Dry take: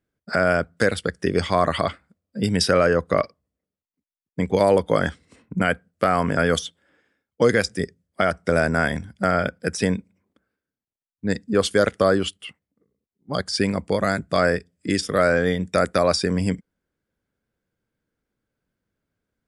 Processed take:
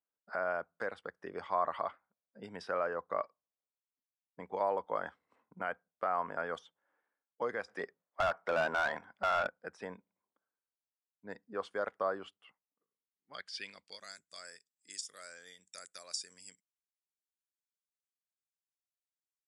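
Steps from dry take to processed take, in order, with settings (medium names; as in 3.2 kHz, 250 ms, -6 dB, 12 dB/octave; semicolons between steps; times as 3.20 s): band-pass sweep 940 Hz -> 7.3 kHz, 12.70–14.27 s; 7.68–9.47 s: overdrive pedal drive 20 dB, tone 3.1 kHz, clips at -14.5 dBFS; trim -7.5 dB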